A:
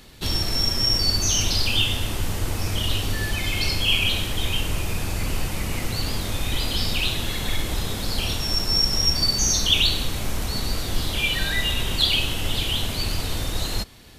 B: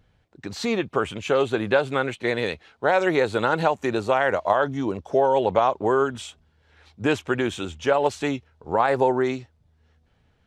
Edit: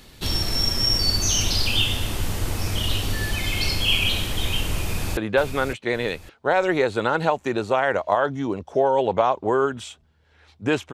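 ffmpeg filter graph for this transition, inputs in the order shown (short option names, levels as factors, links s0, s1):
-filter_complex "[0:a]apad=whole_dur=10.93,atrim=end=10.93,atrim=end=5.172[s0];[1:a]atrim=start=1.548:end=7.31[s1];[s0][s1]acrossfade=d=0.004:c1=hsin:c2=hsin,asplit=2[s2][s3];[s3]afade=t=in:st=4.81:d=0.01,afade=t=out:st=5.17:d=0.01,aecho=0:1:560|1120|1680|2240:0.398107|0.119432|0.0358296|0.0107489[s4];[s2][s4]amix=inputs=2:normalize=0"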